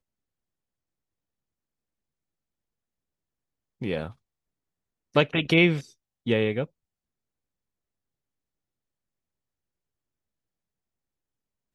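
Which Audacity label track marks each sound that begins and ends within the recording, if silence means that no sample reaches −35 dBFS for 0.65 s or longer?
3.820000	4.100000	sound
5.160000	6.650000	sound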